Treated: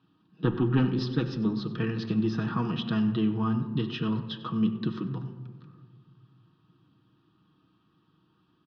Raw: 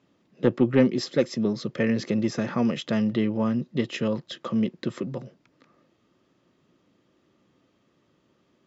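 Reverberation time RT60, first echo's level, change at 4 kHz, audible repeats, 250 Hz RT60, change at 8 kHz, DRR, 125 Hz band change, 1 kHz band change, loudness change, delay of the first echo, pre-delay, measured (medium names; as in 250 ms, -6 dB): 1.6 s, -17.0 dB, -2.0 dB, 1, 2.3 s, no reading, 3.5 dB, +2.5 dB, 0.0 dB, -3.0 dB, 95 ms, 6 ms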